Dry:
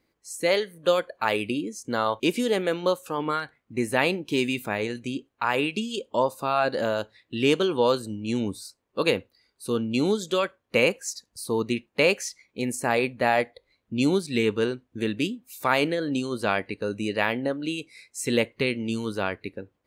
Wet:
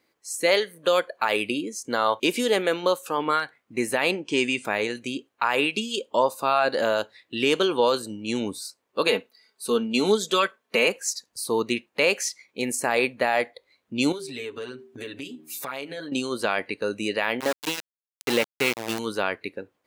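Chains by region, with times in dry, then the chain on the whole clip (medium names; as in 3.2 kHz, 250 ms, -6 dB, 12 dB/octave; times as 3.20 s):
4.11–4.65 s: steep low-pass 9.2 kHz 72 dB/octave + band-stop 3.9 kHz, Q 5.2
9.07–10.88 s: high-pass 130 Hz 6 dB/octave + comb 4.6 ms, depth 58%
14.12–16.12 s: comb 7.2 ms, depth 86% + de-hum 77.7 Hz, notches 5 + compression, threshold -34 dBFS
17.40–18.99 s: treble shelf 7.5 kHz -10.5 dB + small samples zeroed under -26 dBFS
whole clip: high-pass 450 Hz 6 dB/octave; loudness maximiser +13.5 dB; trim -8.5 dB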